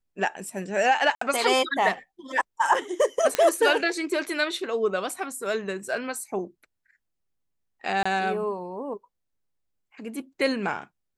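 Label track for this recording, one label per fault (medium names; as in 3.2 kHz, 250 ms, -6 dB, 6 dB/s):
1.150000	1.210000	dropout 64 ms
3.350000	3.350000	pop -7 dBFS
8.030000	8.050000	dropout 25 ms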